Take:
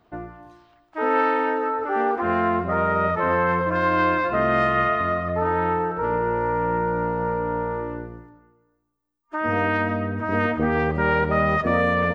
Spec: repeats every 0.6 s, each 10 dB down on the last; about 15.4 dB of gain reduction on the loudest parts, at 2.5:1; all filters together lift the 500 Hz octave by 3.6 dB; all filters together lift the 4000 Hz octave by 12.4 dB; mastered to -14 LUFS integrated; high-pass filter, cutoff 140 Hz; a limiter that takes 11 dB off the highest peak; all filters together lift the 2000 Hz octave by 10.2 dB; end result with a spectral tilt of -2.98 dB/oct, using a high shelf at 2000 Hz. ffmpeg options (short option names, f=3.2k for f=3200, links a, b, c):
-af "highpass=140,equalizer=f=500:t=o:g=3.5,highshelf=f=2k:g=4.5,equalizer=f=2k:t=o:g=8,equalizer=f=4k:t=o:g=9,acompressor=threshold=-35dB:ratio=2.5,alimiter=level_in=3dB:limit=-24dB:level=0:latency=1,volume=-3dB,aecho=1:1:600|1200|1800|2400:0.316|0.101|0.0324|0.0104,volume=21.5dB"